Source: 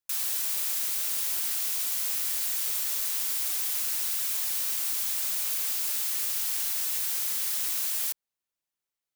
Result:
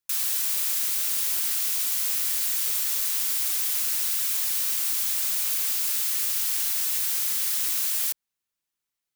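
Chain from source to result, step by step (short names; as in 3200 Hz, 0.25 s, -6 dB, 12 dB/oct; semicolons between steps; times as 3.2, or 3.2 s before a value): bell 600 Hz -5 dB 1.2 oct; gain +3.5 dB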